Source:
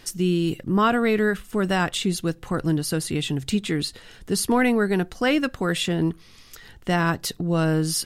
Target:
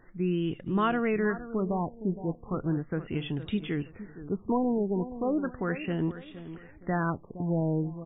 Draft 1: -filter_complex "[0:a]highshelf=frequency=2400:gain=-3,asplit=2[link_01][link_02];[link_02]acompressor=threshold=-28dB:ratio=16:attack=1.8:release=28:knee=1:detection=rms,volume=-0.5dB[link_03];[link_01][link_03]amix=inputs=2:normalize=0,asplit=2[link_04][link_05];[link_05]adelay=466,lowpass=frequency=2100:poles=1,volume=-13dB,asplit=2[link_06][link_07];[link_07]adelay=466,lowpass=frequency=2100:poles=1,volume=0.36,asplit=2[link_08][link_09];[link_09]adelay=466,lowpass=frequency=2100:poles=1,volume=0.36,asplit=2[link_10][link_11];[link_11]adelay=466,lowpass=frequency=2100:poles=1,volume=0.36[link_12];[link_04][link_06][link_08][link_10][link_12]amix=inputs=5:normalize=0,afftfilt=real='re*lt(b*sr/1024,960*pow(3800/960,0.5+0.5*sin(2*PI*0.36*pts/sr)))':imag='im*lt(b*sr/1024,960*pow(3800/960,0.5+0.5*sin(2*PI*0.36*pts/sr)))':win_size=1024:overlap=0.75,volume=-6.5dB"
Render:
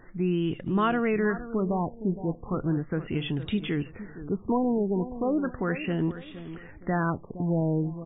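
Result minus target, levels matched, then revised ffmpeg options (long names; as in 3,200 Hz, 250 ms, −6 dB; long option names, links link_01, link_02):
downward compressor: peak gain reduction +14.5 dB
-filter_complex "[0:a]highshelf=frequency=2400:gain=-3,asplit=2[link_01][link_02];[link_02]adelay=466,lowpass=frequency=2100:poles=1,volume=-13dB,asplit=2[link_03][link_04];[link_04]adelay=466,lowpass=frequency=2100:poles=1,volume=0.36,asplit=2[link_05][link_06];[link_06]adelay=466,lowpass=frequency=2100:poles=1,volume=0.36,asplit=2[link_07][link_08];[link_08]adelay=466,lowpass=frequency=2100:poles=1,volume=0.36[link_09];[link_01][link_03][link_05][link_07][link_09]amix=inputs=5:normalize=0,afftfilt=real='re*lt(b*sr/1024,960*pow(3800/960,0.5+0.5*sin(2*PI*0.36*pts/sr)))':imag='im*lt(b*sr/1024,960*pow(3800/960,0.5+0.5*sin(2*PI*0.36*pts/sr)))':win_size=1024:overlap=0.75,volume=-6.5dB"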